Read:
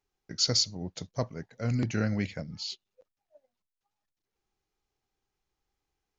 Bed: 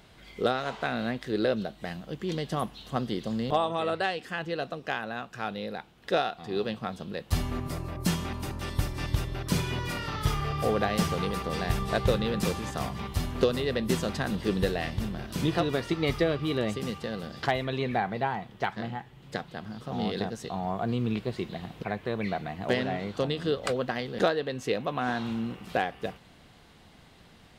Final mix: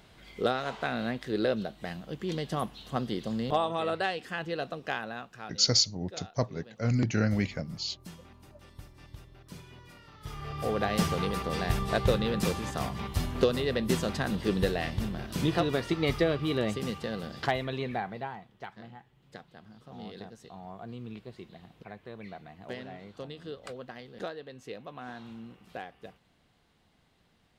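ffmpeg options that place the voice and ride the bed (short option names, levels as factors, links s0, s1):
-filter_complex "[0:a]adelay=5200,volume=1.26[s0];[1:a]volume=7.5,afade=t=out:st=4.97:d=0.7:silence=0.125893,afade=t=in:st=10.2:d=0.79:silence=0.112202,afade=t=out:st=17.33:d=1.17:silence=0.237137[s1];[s0][s1]amix=inputs=2:normalize=0"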